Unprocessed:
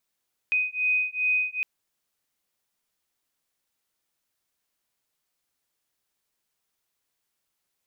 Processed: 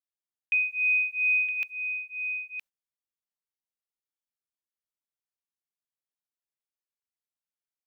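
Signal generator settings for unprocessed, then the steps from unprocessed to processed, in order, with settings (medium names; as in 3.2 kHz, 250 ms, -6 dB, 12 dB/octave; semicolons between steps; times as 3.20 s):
beating tones 2.5 kHz, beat 2.5 Hz, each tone -25.5 dBFS 1.11 s
gate -39 dBFS, range -22 dB; on a send: delay 966 ms -8 dB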